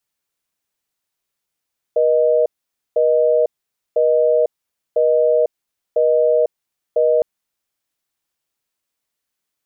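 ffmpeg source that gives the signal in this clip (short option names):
-f lavfi -i "aevalsrc='0.188*(sin(2*PI*480*t)+sin(2*PI*620*t))*clip(min(mod(t,1),0.5-mod(t,1))/0.005,0,1)':d=5.26:s=44100"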